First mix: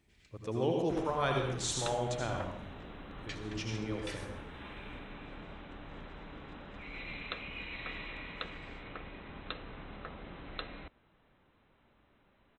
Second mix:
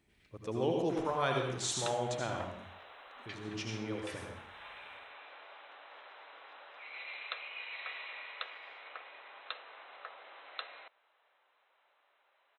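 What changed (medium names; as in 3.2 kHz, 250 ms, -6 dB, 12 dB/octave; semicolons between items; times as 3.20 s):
first sound: add distance through air 180 m; second sound: add high-pass 590 Hz 24 dB/octave; master: add bass shelf 110 Hz -7.5 dB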